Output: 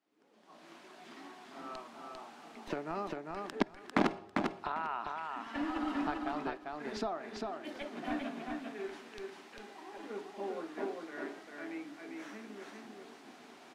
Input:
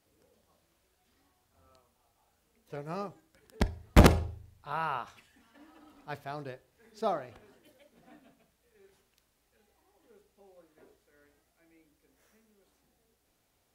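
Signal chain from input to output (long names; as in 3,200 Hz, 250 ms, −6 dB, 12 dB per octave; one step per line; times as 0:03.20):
camcorder AGC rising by 44 dB per second
high-pass filter 240 Hz 24 dB per octave
parametric band 500 Hz −13 dB 0.37 octaves
in parallel at −10.5 dB: comparator with hysteresis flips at −20 dBFS
on the sum: head-to-tape spacing loss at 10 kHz 21 dB
on a send: repeating echo 398 ms, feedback 16%, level −3.5 dB
on the sum: level −5.5 dB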